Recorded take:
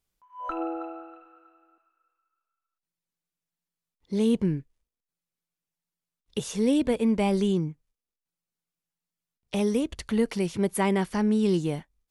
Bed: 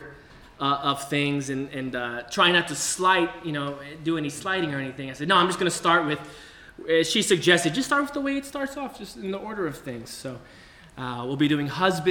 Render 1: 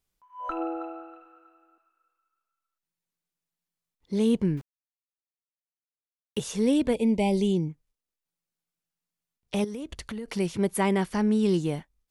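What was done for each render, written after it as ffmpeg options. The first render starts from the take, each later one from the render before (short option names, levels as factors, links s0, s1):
-filter_complex "[0:a]asettb=1/sr,asplit=3[s0][s1][s2];[s0]atrim=end=4.574[s3];[s1]atrim=start=4.57:end=6.4,asetpts=PTS-STARTPTS,afade=t=in:d=0.004:c=qsin,afade=t=out:st=1.826:d=0.004:c=qsin,aeval=exprs='val(0)*gte(abs(val(0)),0.00708)':c=same[s4];[s2]atrim=start=6.396[s5];[s3][s4]acrossfade=d=0.004:c1=hsin:c2=qsin[s6];[s6][s5]acrossfade=d=0.004:c1=qsin:c2=hsin,asplit=3[s7][s8][s9];[s7]afade=t=out:st=6.93:d=0.02[s10];[s8]asuperstop=centerf=1400:order=8:qfactor=1.3,afade=t=in:st=6.93:d=0.02,afade=t=out:st=7.68:d=0.02[s11];[s9]afade=t=in:st=7.68:d=0.02[s12];[s10][s11][s12]amix=inputs=3:normalize=0,asettb=1/sr,asplit=3[s13][s14][s15];[s13]atrim=end=9.644[s16];[s14]atrim=start=9.64:end=10.28,asetpts=PTS-STARTPTS,afade=t=in:d=0.004:c=qsin,afade=t=out:st=0.636:d=0.004:c=qsin,acompressor=threshold=0.0251:ratio=8:attack=3.2:release=140:knee=1:detection=peak[s17];[s15]atrim=start=10.276[s18];[s16][s17]acrossfade=d=0.004:c1=hsin:c2=qsin[s19];[s19][s18]acrossfade=d=0.004:c1=qsin:c2=hsin"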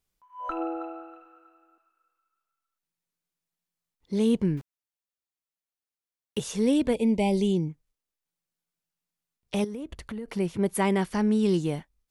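-filter_complex "[0:a]asettb=1/sr,asplit=3[s0][s1][s2];[s0]atrim=end=9.674[s3];[s1]atrim=start=9.67:end=10.66,asetpts=PTS-STARTPTS,afade=t=in:d=0.004:c=qsin,afade=t=out:st=0.986:d=0.004:c=qsin,equalizer=f=5800:t=o:w=2.3:g=-8[s4];[s2]atrim=start=10.656[s5];[s3][s4]acrossfade=d=0.004:c1=hsin:c2=qsin[s6];[s6][s5]acrossfade=d=0.004:c1=qsin:c2=hsin"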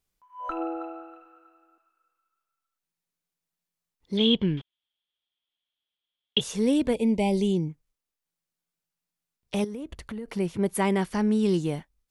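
-filter_complex "[0:a]asettb=1/sr,asplit=3[s0][s1][s2];[s0]atrim=end=4.174[s3];[s1]atrim=start=4.17:end=6.41,asetpts=PTS-STARTPTS,afade=t=in:d=0.004:c=qsin,afade=t=out:st=2.236:d=0.004:c=qsin,lowpass=f=3300:t=q:w=15[s4];[s2]atrim=start=6.406[s5];[s3][s4]acrossfade=d=0.004:c1=hsin:c2=qsin[s6];[s6][s5]acrossfade=d=0.004:c1=qsin:c2=hsin"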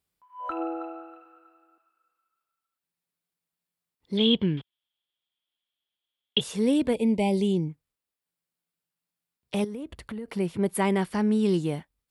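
-af "highpass=62,equalizer=f=6200:t=o:w=0.31:g=-7"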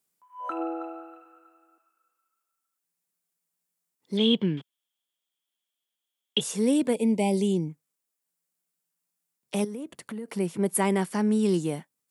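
-af "highpass=f=150:w=0.5412,highpass=f=150:w=1.3066,highshelf=f=5200:t=q:w=1.5:g=6"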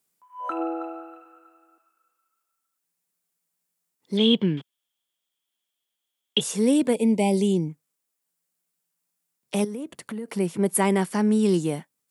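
-af "volume=1.41"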